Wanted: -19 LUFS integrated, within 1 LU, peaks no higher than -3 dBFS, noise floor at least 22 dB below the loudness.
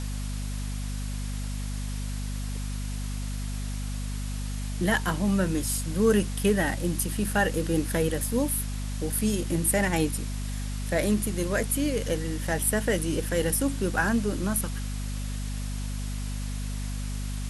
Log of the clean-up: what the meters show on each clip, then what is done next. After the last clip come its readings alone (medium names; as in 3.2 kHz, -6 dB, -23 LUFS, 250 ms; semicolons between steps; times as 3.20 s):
hum 50 Hz; highest harmonic 250 Hz; hum level -29 dBFS; noise floor -32 dBFS; noise floor target -51 dBFS; loudness -28.5 LUFS; peak level -9.5 dBFS; loudness target -19.0 LUFS
-> de-hum 50 Hz, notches 5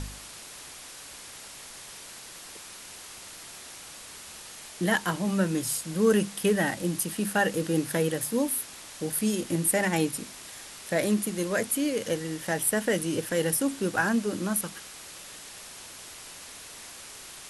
hum not found; noise floor -45 dBFS; noise floor target -49 dBFS
-> noise reduction 6 dB, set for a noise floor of -45 dBFS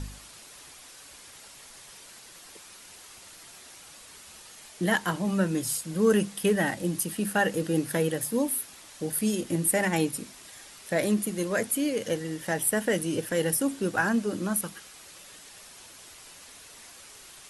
noise floor -49 dBFS; noise floor target -50 dBFS
-> noise reduction 6 dB, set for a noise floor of -49 dBFS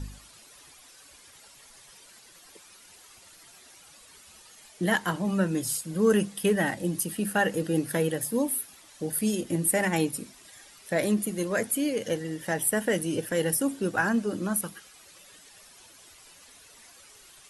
noise floor -53 dBFS; loudness -27.5 LUFS; peak level -9.0 dBFS; loudness target -19.0 LUFS
-> trim +8.5 dB; peak limiter -3 dBFS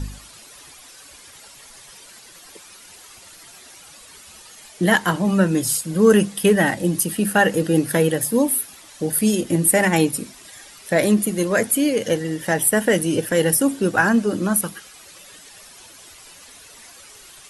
loudness -19.0 LUFS; peak level -3.0 dBFS; noise floor -45 dBFS